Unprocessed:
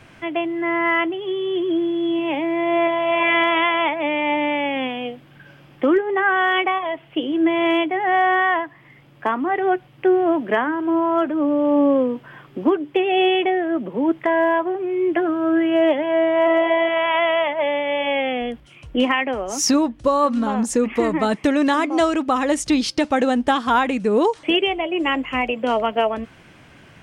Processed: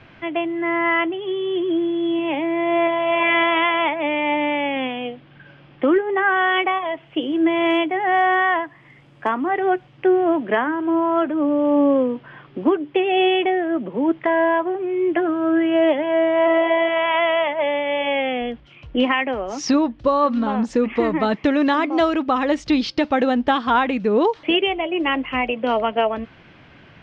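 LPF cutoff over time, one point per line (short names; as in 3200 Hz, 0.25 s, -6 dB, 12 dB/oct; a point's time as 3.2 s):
LPF 24 dB/oct
6.53 s 4300 Hz
7.34 s 9200 Hz
9.68 s 9200 Hz
10.21 s 4600 Hz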